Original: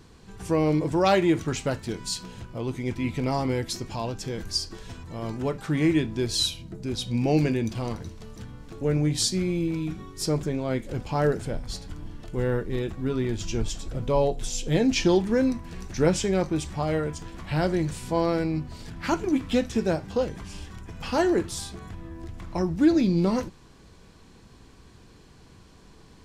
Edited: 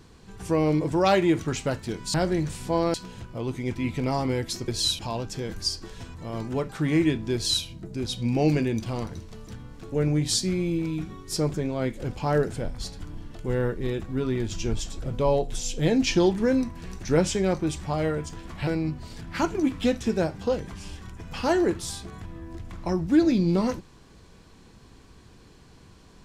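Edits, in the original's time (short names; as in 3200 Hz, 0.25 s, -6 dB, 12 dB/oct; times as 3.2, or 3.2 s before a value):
6.23–6.54 copy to 3.88
17.56–18.36 move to 2.14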